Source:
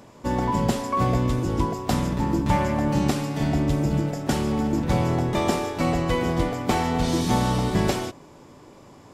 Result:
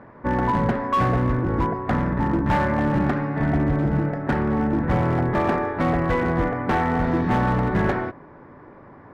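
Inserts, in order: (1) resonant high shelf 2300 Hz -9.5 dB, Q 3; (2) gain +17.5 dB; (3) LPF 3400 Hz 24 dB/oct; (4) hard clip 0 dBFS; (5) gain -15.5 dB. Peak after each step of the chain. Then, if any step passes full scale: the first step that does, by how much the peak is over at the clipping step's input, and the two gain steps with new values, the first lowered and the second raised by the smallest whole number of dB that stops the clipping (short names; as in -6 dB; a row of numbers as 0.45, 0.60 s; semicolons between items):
-8.0, +9.5, +9.5, 0.0, -15.5 dBFS; step 2, 9.5 dB; step 2 +7.5 dB, step 5 -5.5 dB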